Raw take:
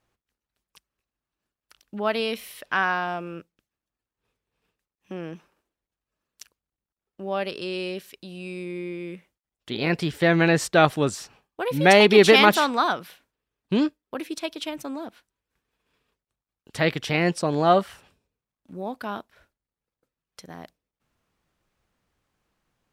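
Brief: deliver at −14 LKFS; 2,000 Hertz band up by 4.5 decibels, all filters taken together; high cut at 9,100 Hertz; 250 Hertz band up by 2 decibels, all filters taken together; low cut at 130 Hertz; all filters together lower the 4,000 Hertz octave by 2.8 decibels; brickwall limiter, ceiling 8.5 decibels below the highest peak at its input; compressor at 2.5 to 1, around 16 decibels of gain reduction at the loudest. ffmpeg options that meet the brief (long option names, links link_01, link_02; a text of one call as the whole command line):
ffmpeg -i in.wav -af "highpass=130,lowpass=9100,equalizer=frequency=250:width_type=o:gain=3.5,equalizer=frequency=2000:width_type=o:gain=7.5,equalizer=frequency=4000:width_type=o:gain=-7.5,acompressor=threshold=-33dB:ratio=2.5,volume=21.5dB,alimiter=limit=-0.5dB:level=0:latency=1" out.wav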